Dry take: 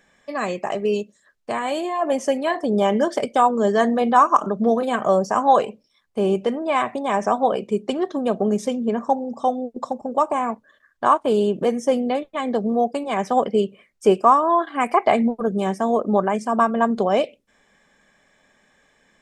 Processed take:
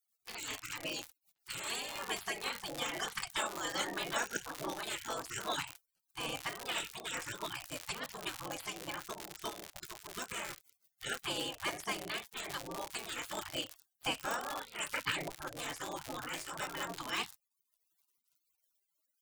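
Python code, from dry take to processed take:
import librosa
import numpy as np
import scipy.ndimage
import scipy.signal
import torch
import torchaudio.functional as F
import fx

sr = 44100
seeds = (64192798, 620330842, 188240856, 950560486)

y = fx.dmg_crackle(x, sr, seeds[0], per_s=140.0, level_db=-29.0)
y = fx.spec_gate(y, sr, threshold_db=-25, keep='weak')
y = fx.buffer_crackle(y, sr, first_s=0.88, period_s=0.54, block=256, kind='repeat')
y = y * librosa.db_to_amplitude(1.0)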